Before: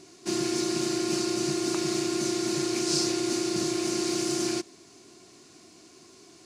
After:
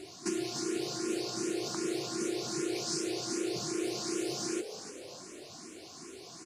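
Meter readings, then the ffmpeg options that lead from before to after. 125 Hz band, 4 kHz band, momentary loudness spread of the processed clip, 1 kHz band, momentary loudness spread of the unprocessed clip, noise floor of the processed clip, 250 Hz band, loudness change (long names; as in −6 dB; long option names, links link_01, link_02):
−8.0 dB, −7.0 dB, 13 LU, −6.0 dB, 4 LU, −50 dBFS, −7.0 dB, −7.0 dB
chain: -filter_complex "[0:a]acompressor=threshold=-37dB:ratio=6,asplit=6[link_01][link_02][link_03][link_04][link_05][link_06];[link_02]adelay=295,afreqshift=83,volume=-9.5dB[link_07];[link_03]adelay=590,afreqshift=166,volume=-16.8dB[link_08];[link_04]adelay=885,afreqshift=249,volume=-24.2dB[link_09];[link_05]adelay=1180,afreqshift=332,volume=-31.5dB[link_10];[link_06]adelay=1475,afreqshift=415,volume=-38.8dB[link_11];[link_01][link_07][link_08][link_09][link_10][link_11]amix=inputs=6:normalize=0,asplit=2[link_12][link_13];[link_13]afreqshift=2.6[link_14];[link_12][link_14]amix=inputs=2:normalize=1,volume=7dB"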